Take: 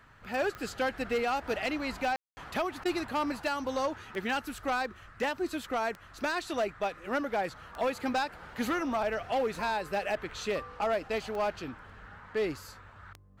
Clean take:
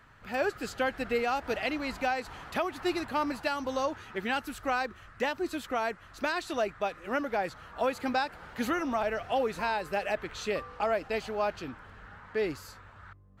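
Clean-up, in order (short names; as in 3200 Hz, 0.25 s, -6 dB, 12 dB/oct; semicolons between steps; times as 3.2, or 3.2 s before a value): clip repair -24 dBFS; de-click; room tone fill 2.16–2.37; interpolate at 2.84, 12 ms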